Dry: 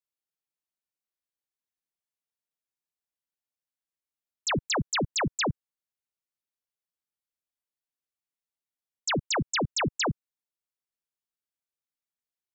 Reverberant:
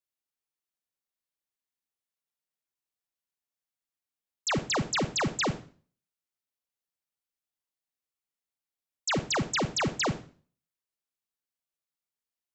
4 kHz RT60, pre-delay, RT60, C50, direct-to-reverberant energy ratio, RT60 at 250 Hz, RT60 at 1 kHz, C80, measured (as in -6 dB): 0.40 s, 32 ms, 0.40 s, 13.5 dB, 10.5 dB, 0.50 s, 0.40 s, 18.0 dB